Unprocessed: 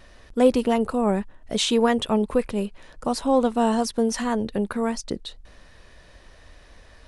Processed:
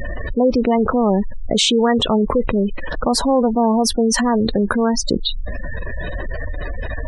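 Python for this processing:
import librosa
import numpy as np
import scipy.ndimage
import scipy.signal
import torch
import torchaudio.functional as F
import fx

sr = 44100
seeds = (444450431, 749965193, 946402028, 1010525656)

y = fx.spec_gate(x, sr, threshold_db=-20, keep='strong')
y = fx.env_flatten(y, sr, amount_pct=70)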